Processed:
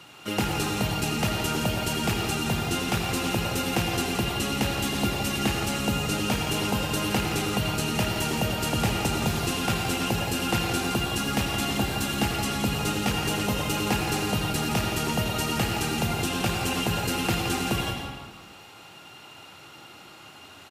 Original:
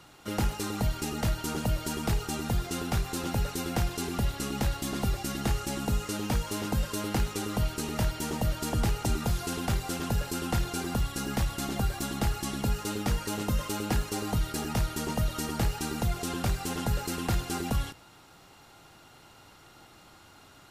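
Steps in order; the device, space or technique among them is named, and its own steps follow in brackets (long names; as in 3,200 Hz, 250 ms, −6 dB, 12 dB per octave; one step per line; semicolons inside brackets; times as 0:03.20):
PA in a hall (high-pass filter 110 Hz 12 dB per octave; parametric band 2,700 Hz +8 dB 0.5 octaves; single-tap delay 170 ms −9.5 dB; convolution reverb RT60 1.5 s, pre-delay 74 ms, DRR 2 dB)
level +3.5 dB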